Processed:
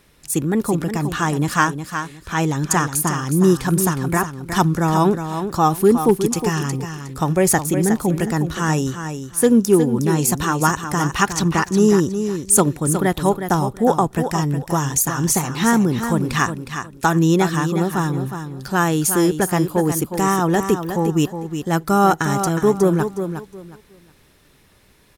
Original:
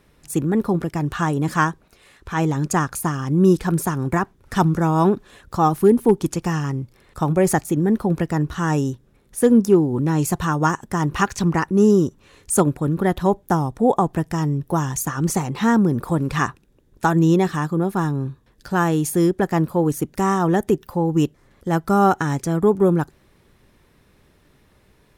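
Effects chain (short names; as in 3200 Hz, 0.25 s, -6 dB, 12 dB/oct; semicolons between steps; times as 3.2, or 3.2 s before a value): high shelf 2100 Hz +8.5 dB; on a send: feedback echo 0.363 s, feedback 23%, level -8.5 dB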